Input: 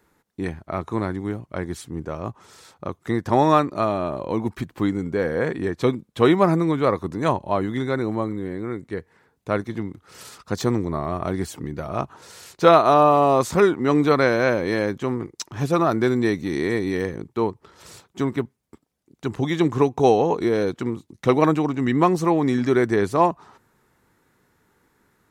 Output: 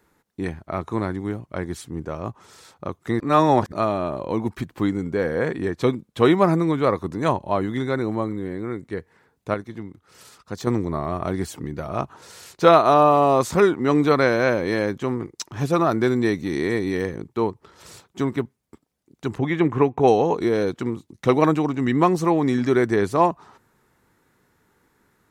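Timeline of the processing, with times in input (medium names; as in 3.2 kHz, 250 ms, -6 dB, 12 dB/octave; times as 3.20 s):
3.20–3.72 s: reverse
9.54–10.67 s: gain -6 dB
19.38–20.08 s: resonant high shelf 3.3 kHz -11 dB, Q 1.5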